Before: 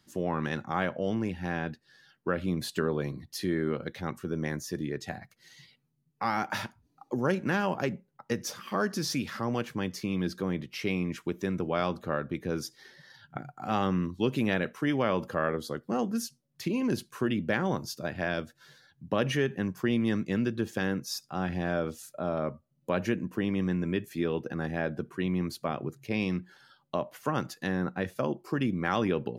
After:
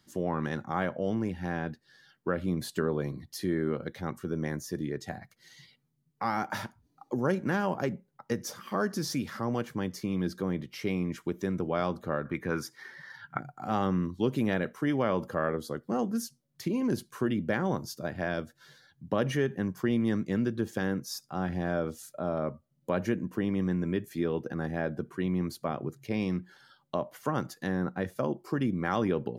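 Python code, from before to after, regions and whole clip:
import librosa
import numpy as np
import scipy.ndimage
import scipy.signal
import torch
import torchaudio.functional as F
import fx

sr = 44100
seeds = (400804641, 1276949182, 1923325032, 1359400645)

y = fx.chain(x, sr, fx.highpass(hz=59.0, slope=12),
    fx.band_shelf(hz=1500.0, db=10.0, octaves=1.7), at=(12.25, 13.4))
y = fx.notch(y, sr, hz=2600.0, q=14.0)
y = fx.dynamic_eq(y, sr, hz=3200.0, q=0.72, threshold_db=-48.0, ratio=4.0, max_db=-5)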